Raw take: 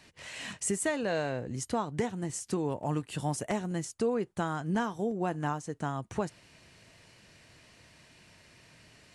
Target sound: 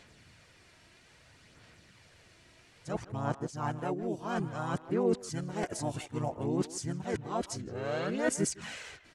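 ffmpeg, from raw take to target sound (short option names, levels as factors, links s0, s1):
-filter_complex "[0:a]areverse,asplit=2[s0][s1];[s1]asetrate=35002,aresample=44100,atempo=1.25992,volume=0.794[s2];[s0][s2]amix=inputs=2:normalize=0,asplit=2[s3][s4];[s4]adelay=160,highpass=300,lowpass=3400,asoftclip=type=hard:threshold=0.0531,volume=0.2[s5];[s3][s5]amix=inputs=2:normalize=0,aphaser=in_gain=1:out_gain=1:delay=3.1:decay=0.35:speed=0.6:type=sinusoidal,volume=0.596"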